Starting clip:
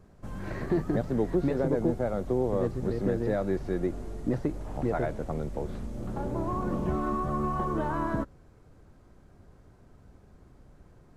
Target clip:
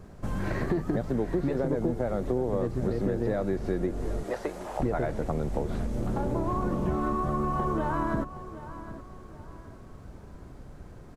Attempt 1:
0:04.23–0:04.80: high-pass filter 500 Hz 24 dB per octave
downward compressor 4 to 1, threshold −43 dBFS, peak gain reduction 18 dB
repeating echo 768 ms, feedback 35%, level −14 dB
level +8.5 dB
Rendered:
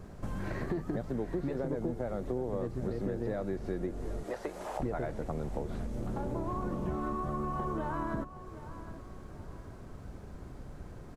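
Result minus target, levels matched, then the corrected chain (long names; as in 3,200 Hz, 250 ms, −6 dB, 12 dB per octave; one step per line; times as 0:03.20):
downward compressor: peak gain reduction +6.5 dB
0:04.23–0:04.80: high-pass filter 500 Hz 24 dB per octave
downward compressor 4 to 1, threshold −34.5 dBFS, peak gain reduction 11.5 dB
repeating echo 768 ms, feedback 35%, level −14 dB
level +8.5 dB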